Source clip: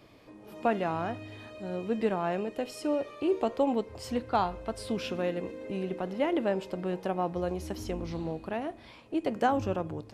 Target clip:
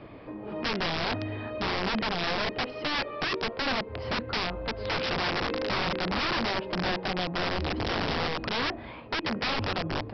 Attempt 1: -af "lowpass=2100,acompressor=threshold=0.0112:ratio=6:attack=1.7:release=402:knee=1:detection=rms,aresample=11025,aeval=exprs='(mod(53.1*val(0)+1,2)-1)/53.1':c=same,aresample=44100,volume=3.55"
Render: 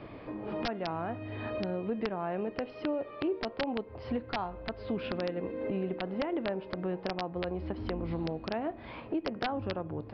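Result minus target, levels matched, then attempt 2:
compression: peak gain reduction +8.5 dB
-af "lowpass=2100,acompressor=threshold=0.0355:ratio=6:attack=1.7:release=402:knee=1:detection=rms,aresample=11025,aeval=exprs='(mod(53.1*val(0)+1,2)-1)/53.1':c=same,aresample=44100,volume=3.55"

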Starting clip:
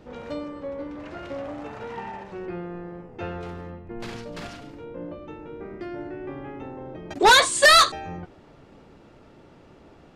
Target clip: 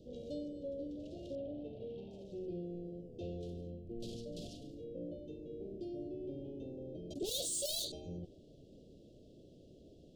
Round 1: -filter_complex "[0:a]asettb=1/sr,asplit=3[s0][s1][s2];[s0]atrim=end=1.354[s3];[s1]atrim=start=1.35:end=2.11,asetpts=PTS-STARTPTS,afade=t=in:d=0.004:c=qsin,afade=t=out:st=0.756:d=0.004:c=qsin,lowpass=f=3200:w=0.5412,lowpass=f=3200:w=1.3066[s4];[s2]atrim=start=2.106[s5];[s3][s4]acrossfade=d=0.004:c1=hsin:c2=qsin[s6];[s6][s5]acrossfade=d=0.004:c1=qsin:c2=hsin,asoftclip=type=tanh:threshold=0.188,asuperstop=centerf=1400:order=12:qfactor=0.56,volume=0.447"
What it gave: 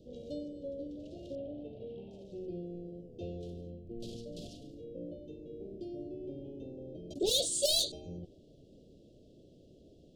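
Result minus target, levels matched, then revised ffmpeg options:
saturation: distortion -12 dB
-filter_complex "[0:a]asettb=1/sr,asplit=3[s0][s1][s2];[s0]atrim=end=1.354[s3];[s1]atrim=start=1.35:end=2.11,asetpts=PTS-STARTPTS,afade=t=in:d=0.004:c=qsin,afade=t=out:st=0.756:d=0.004:c=qsin,lowpass=f=3200:w=0.5412,lowpass=f=3200:w=1.3066[s4];[s2]atrim=start=2.106[s5];[s3][s4]acrossfade=d=0.004:c1=hsin:c2=qsin[s6];[s6][s5]acrossfade=d=0.004:c1=qsin:c2=hsin,asoftclip=type=tanh:threshold=0.0473,asuperstop=centerf=1400:order=12:qfactor=0.56,volume=0.447"

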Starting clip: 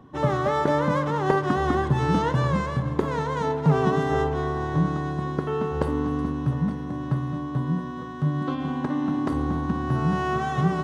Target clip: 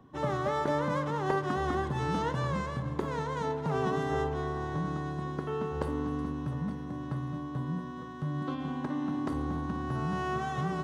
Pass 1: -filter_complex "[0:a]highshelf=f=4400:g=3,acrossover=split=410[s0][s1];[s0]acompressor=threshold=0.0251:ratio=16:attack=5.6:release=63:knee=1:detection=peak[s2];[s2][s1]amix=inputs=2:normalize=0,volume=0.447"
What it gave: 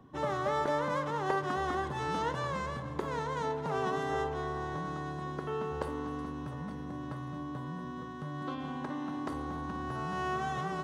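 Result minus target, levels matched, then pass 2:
compression: peak gain reduction +8.5 dB
-filter_complex "[0:a]highshelf=f=4400:g=3,acrossover=split=410[s0][s1];[s0]acompressor=threshold=0.0708:ratio=16:attack=5.6:release=63:knee=1:detection=peak[s2];[s2][s1]amix=inputs=2:normalize=0,volume=0.447"

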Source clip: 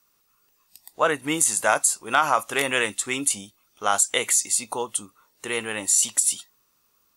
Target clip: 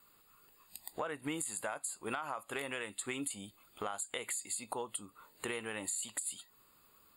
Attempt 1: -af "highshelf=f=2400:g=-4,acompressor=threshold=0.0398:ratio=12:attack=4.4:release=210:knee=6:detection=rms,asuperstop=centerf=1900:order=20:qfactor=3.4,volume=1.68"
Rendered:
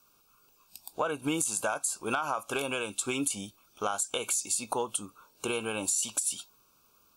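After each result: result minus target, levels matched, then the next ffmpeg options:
compression: peak gain reduction -8.5 dB; 2 kHz band -2.5 dB
-af "highshelf=f=2400:g=-4,acompressor=threshold=0.0133:ratio=12:attack=4.4:release=210:knee=6:detection=rms,asuperstop=centerf=1900:order=20:qfactor=3.4,volume=1.68"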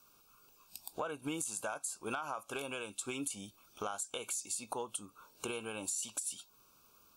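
2 kHz band -2.5 dB
-af "highshelf=f=2400:g=-4,acompressor=threshold=0.0133:ratio=12:attack=4.4:release=210:knee=6:detection=rms,asuperstop=centerf=5800:order=20:qfactor=3.4,volume=1.68"

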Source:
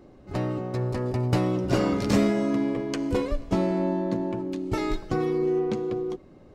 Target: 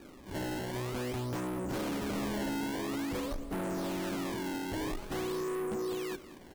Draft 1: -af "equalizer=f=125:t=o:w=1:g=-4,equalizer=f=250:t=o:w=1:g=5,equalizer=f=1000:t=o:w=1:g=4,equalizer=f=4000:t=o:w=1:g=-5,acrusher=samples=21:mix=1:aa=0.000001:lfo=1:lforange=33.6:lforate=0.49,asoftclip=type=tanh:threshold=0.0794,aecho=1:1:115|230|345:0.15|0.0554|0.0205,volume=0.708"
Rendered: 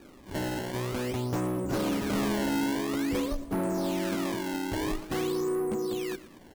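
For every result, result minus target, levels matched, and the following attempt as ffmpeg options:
echo 78 ms early; saturation: distortion -5 dB
-af "equalizer=f=125:t=o:w=1:g=-4,equalizer=f=250:t=o:w=1:g=5,equalizer=f=1000:t=o:w=1:g=4,equalizer=f=4000:t=o:w=1:g=-5,acrusher=samples=21:mix=1:aa=0.000001:lfo=1:lforange=33.6:lforate=0.49,asoftclip=type=tanh:threshold=0.0794,aecho=1:1:193|386|579:0.15|0.0554|0.0205,volume=0.708"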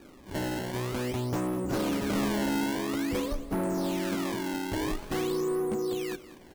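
saturation: distortion -5 dB
-af "equalizer=f=125:t=o:w=1:g=-4,equalizer=f=250:t=o:w=1:g=5,equalizer=f=1000:t=o:w=1:g=4,equalizer=f=4000:t=o:w=1:g=-5,acrusher=samples=21:mix=1:aa=0.000001:lfo=1:lforange=33.6:lforate=0.49,asoftclip=type=tanh:threshold=0.0316,aecho=1:1:193|386|579:0.15|0.0554|0.0205,volume=0.708"

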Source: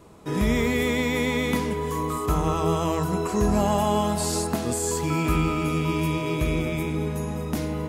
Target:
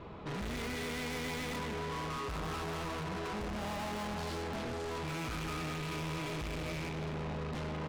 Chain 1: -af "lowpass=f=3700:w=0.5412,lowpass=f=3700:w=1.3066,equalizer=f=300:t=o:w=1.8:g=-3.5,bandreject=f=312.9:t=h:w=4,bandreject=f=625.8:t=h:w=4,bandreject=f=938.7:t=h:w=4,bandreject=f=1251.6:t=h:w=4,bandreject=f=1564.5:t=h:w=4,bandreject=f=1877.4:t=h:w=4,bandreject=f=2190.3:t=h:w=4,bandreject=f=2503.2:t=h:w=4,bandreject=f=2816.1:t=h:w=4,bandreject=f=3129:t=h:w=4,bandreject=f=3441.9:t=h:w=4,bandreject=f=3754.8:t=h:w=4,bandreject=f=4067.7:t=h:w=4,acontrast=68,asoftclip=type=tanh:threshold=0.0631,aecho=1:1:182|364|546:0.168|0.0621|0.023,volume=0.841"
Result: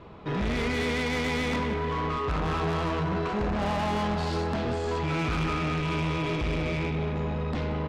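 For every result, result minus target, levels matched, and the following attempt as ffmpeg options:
echo 82 ms early; saturation: distortion -4 dB
-af "lowpass=f=3700:w=0.5412,lowpass=f=3700:w=1.3066,equalizer=f=300:t=o:w=1.8:g=-3.5,bandreject=f=312.9:t=h:w=4,bandreject=f=625.8:t=h:w=4,bandreject=f=938.7:t=h:w=4,bandreject=f=1251.6:t=h:w=4,bandreject=f=1564.5:t=h:w=4,bandreject=f=1877.4:t=h:w=4,bandreject=f=2190.3:t=h:w=4,bandreject=f=2503.2:t=h:w=4,bandreject=f=2816.1:t=h:w=4,bandreject=f=3129:t=h:w=4,bandreject=f=3441.9:t=h:w=4,bandreject=f=3754.8:t=h:w=4,bandreject=f=4067.7:t=h:w=4,acontrast=68,asoftclip=type=tanh:threshold=0.0631,aecho=1:1:264|528|792:0.168|0.0621|0.023,volume=0.841"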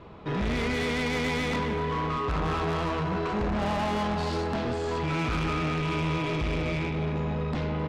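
saturation: distortion -4 dB
-af "lowpass=f=3700:w=0.5412,lowpass=f=3700:w=1.3066,equalizer=f=300:t=o:w=1.8:g=-3.5,bandreject=f=312.9:t=h:w=4,bandreject=f=625.8:t=h:w=4,bandreject=f=938.7:t=h:w=4,bandreject=f=1251.6:t=h:w=4,bandreject=f=1564.5:t=h:w=4,bandreject=f=1877.4:t=h:w=4,bandreject=f=2190.3:t=h:w=4,bandreject=f=2503.2:t=h:w=4,bandreject=f=2816.1:t=h:w=4,bandreject=f=3129:t=h:w=4,bandreject=f=3441.9:t=h:w=4,bandreject=f=3754.8:t=h:w=4,bandreject=f=4067.7:t=h:w=4,acontrast=68,asoftclip=type=tanh:threshold=0.0158,aecho=1:1:264|528|792:0.168|0.0621|0.023,volume=0.841"

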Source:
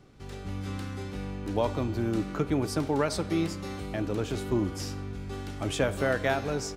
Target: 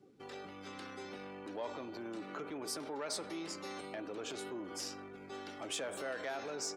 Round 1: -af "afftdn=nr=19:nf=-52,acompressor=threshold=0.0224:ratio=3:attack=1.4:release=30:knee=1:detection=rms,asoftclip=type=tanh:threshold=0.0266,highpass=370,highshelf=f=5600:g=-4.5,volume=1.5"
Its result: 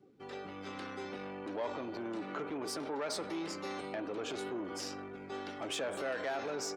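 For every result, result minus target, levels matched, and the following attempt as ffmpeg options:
compression: peak gain reduction -5.5 dB; 8 kHz band -5.0 dB
-af "afftdn=nr=19:nf=-52,acompressor=threshold=0.00841:ratio=3:attack=1.4:release=30:knee=1:detection=rms,asoftclip=type=tanh:threshold=0.0266,highpass=370,highshelf=f=5600:g=-4.5,volume=1.5"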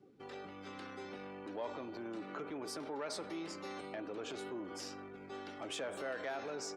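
8 kHz band -5.0 dB
-af "afftdn=nr=19:nf=-52,acompressor=threshold=0.00841:ratio=3:attack=1.4:release=30:knee=1:detection=rms,asoftclip=type=tanh:threshold=0.0266,highpass=370,highshelf=f=5600:g=5.5,volume=1.5"

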